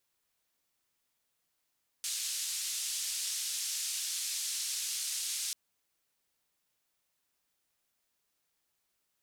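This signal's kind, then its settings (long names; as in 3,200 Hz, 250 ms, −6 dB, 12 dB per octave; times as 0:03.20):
band-limited noise 4,000–8,600 Hz, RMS −36 dBFS 3.49 s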